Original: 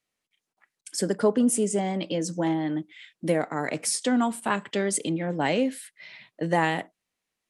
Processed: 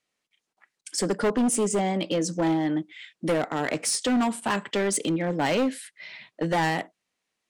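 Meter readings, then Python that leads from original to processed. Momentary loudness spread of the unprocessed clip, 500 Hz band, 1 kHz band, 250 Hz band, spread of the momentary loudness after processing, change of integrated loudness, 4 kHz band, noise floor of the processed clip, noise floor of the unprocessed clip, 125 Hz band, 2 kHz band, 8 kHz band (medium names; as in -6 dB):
12 LU, 0.0 dB, +1.0 dB, +0.5 dB, 10 LU, +0.5 dB, +3.0 dB, -82 dBFS, -85 dBFS, +0.5 dB, +1.0 dB, +1.0 dB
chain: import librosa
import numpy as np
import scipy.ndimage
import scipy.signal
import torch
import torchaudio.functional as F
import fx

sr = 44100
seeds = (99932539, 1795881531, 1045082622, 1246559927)

y = scipy.signal.sosfilt(scipy.signal.butter(2, 9300.0, 'lowpass', fs=sr, output='sos'), x)
y = fx.low_shelf(y, sr, hz=92.0, db=-10.5)
y = np.clip(y, -10.0 ** (-23.0 / 20.0), 10.0 ** (-23.0 / 20.0))
y = y * 10.0 ** (3.5 / 20.0)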